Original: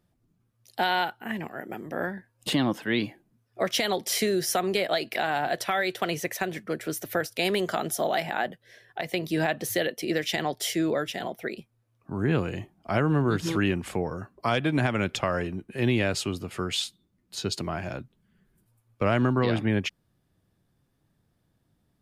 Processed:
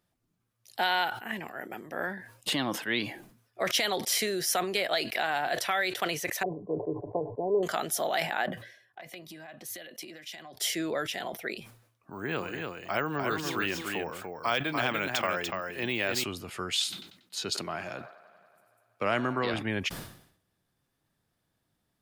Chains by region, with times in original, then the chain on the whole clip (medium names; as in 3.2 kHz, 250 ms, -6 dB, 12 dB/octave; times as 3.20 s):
6.43–7.63 s: brick-wall FIR low-pass 1.1 kHz + peaking EQ 420 Hz +7 dB 0.56 oct + comb 6.9 ms, depth 51%
8.46–10.57 s: compression 12:1, threshold -36 dBFS + comb of notches 450 Hz + three bands expanded up and down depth 70%
12.11–16.24 s: bass shelf 180 Hz -9.5 dB + delay 292 ms -4.5 dB + careless resampling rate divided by 2×, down filtered, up hold
16.83–19.54 s: high-pass 130 Hz + feedback echo behind a band-pass 94 ms, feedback 78%, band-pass 990 Hz, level -16.5 dB
whole clip: bass shelf 480 Hz -10.5 dB; decay stretcher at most 89 dB/s